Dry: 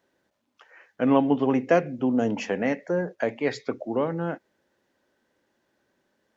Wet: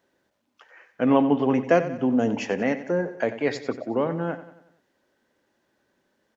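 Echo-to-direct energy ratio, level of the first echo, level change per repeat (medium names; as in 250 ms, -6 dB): -12.5 dB, -13.5 dB, -6.0 dB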